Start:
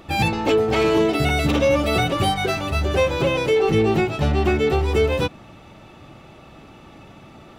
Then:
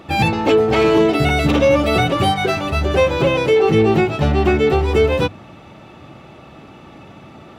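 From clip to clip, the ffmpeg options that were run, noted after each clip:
-af "highpass=63,highshelf=f=4900:g=-6.5,bandreject=f=50:t=h:w=6,bandreject=f=100:t=h:w=6,volume=1.68"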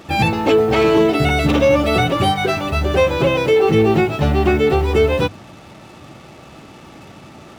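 -af "acrusher=bits=6:mix=0:aa=0.5"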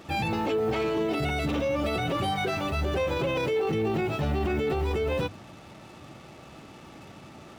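-af "alimiter=limit=0.224:level=0:latency=1:release=19,volume=0.447"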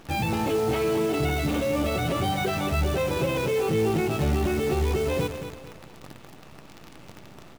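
-af "lowshelf=f=270:g=4.5,acrusher=bits=7:dc=4:mix=0:aa=0.000001,aecho=1:1:224|448|672|896:0.335|0.117|0.041|0.0144"

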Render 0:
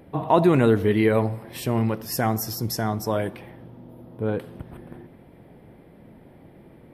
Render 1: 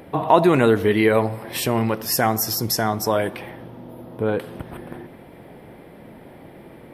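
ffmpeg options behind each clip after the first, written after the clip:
-filter_complex "[0:a]lowshelf=f=300:g=-9,asplit=2[s0][s1];[s1]acompressor=threshold=0.0224:ratio=6,volume=1.12[s2];[s0][s2]amix=inputs=2:normalize=0,volume=1.58"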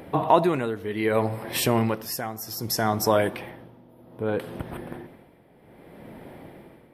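-af "tremolo=f=0.64:d=0.8"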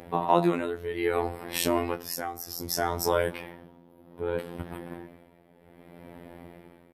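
-filter_complex "[0:a]asplit=2[s0][s1];[s1]adelay=22,volume=0.299[s2];[s0][s2]amix=inputs=2:normalize=0,afftfilt=real='hypot(re,im)*cos(PI*b)':imag='0':win_size=2048:overlap=0.75"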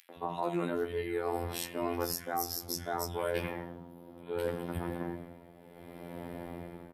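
-filter_complex "[0:a]areverse,acompressor=threshold=0.0224:ratio=8,areverse,acrossover=split=220|2200[s0][s1][s2];[s1]adelay=90[s3];[s0]adelay=160[s4];[s4][s3][s2]amix=inputs=3:normalize=0,volume=1.68"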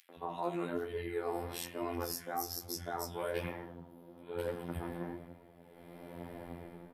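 -af "flanger=delay=8.6:depth=9.1:regen=43:speed=1.1:shape=triangular"

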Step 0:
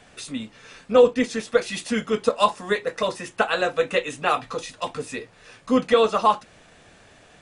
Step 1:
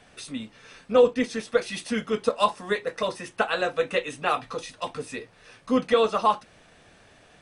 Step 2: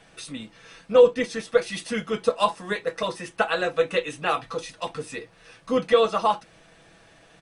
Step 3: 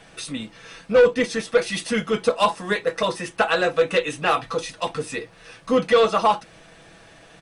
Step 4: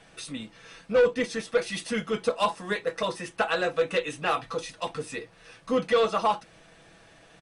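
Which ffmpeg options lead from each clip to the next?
-af "bandreject=f=7100:w=9,volume=0.708"
-af "aecho=1:1:6.1:0.47"
-af "asoftclip=type=tanh:threshold=0.178,volume=1.88"
-af "aresample=32000,aresample=44100,volume=0.501"

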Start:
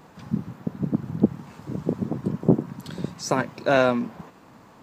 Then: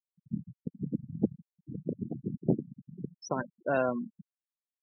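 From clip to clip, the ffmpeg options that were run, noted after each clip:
-af "afftfilt=real='re*gte(hypot(re,im),0.112)':imag='im*gte(hypot(re,im),0.112)':win_size=1024:overlap=0.75,volume=0.355"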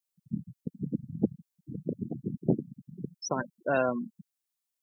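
-af "highshelf=f=3700:g=10.5,volume=1.12"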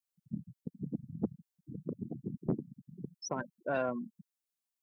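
-af "asoftclip=type=tanh:threshold=0.168,volume=0.562"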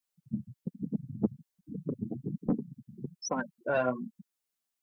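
-af "flanger=delay=3.9:depth=5.4:regen=-3:speed=1.2:shape=sinusoidal,volume=2.24"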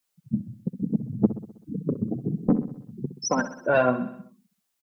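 -af "aecho=1:1:64|128|192|256|320|384:0.224|0.128|0.0727|0.0415|0.0236|0.0135,volume=2.51"

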